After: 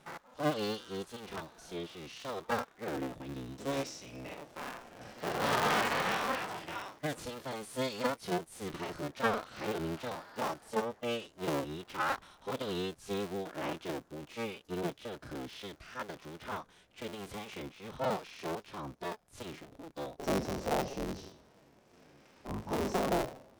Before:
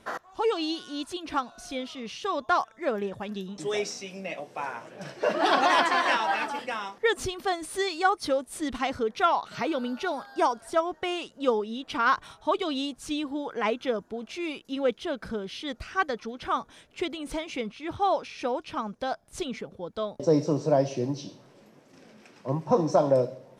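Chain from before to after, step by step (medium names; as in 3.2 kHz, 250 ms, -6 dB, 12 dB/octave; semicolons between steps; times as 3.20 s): cycle switcher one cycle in 3, inverted; harmonic-percussive split percussive -14 dB; trim -3 dB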